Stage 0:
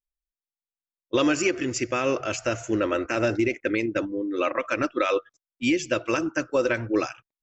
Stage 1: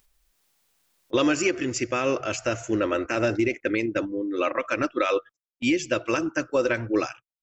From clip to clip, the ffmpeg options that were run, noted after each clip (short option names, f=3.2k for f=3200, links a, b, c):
-af "agate=range=-18dB:threshold=-39dB:ratio=16:detection=peak,acompressor=mode=upward:threshold=-34dB:ratio=2.5"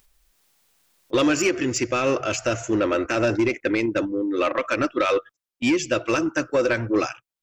-af "asoftclip=type=tanh:threshold=-17.5dB,volume=4.5dB"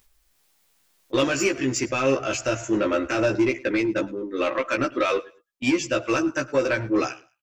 -filter_complex "[0:a]asplit=2[a][b];[b]adelay=15,volume=-2.5dB[c];[a][c]amix=inputs=2:normalize=0,aecho=1:1:106|212:0.0794|0.0199,volume=-3dB"